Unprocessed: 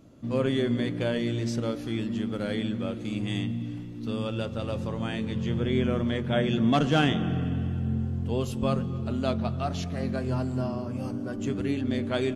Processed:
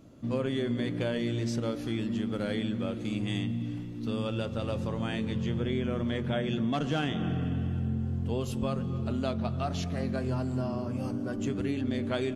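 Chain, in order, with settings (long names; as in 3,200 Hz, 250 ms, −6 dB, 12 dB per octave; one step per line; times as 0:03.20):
downward compressor, threshold −26 dBFS, peak gain reduction 8 dB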